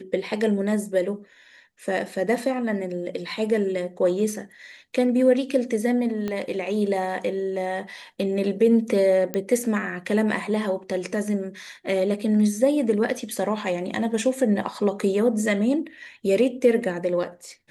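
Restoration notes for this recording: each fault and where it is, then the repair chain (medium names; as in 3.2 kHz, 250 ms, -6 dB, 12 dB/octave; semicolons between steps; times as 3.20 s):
6.28 s: pop -16 dBFS
9.34 s: pop -12 dBFS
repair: de-click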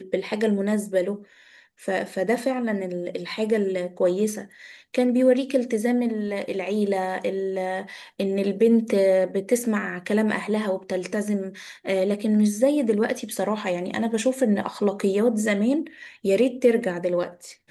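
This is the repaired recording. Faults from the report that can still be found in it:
6.28 s: pop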